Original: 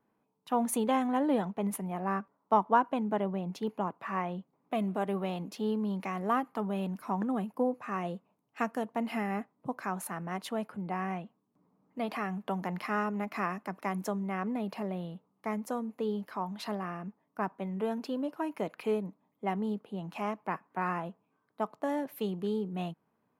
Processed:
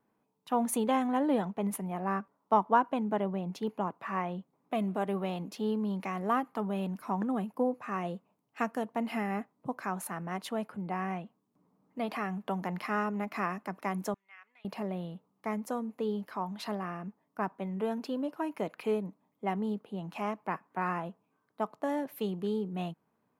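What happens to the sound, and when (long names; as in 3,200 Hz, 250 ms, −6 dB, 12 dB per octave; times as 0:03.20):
0:14.14–0:14.65: four-pole ladder band-pass 2,800 Hz, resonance 30%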